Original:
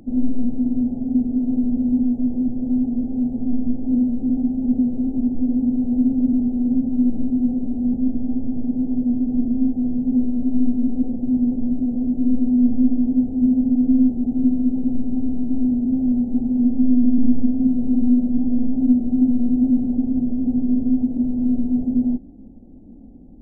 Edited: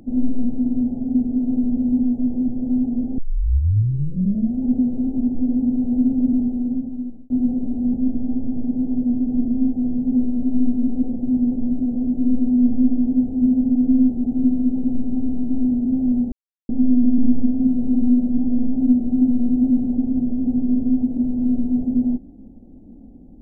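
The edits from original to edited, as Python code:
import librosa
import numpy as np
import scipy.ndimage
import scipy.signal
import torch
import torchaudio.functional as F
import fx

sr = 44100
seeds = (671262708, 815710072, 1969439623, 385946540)

y = fx.edit(x, sr, fx.tape_start(start_s=3.18, length_s=1.42),
    fx.fade_out_span(start_s=6.4, length_s=0.9),
    fx.silence(start_s=16.32, length_s=0.37), tone=tone)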